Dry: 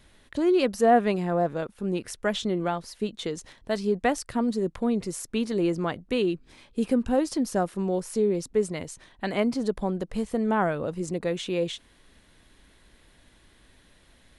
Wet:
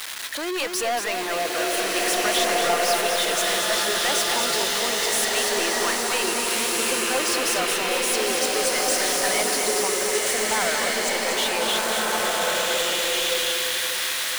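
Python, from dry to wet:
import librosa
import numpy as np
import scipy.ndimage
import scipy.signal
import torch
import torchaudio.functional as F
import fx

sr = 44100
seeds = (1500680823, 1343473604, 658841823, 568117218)

p1 = x + 0.5 * 10.0 ** (-34.5 / 20.0) * np.sign(x)
p2 = scipy.signal.sosfilt(scipy.signal.butter(2, 1100.0, 'highpass', fs=sr, output='sos'), p1)
p3 = fx.leveller(p2, sr, passes=5)
p4 = p3 + fx.echo_single(p3, sr, ms=235, db=-6.0, dry=0)
p5 = fx.rev_bloom(p4, sr, seeds[0], attack_ms=1730, drr_db=-4.0)
y = p5 * librosa.db_to_amplitude(-6.5)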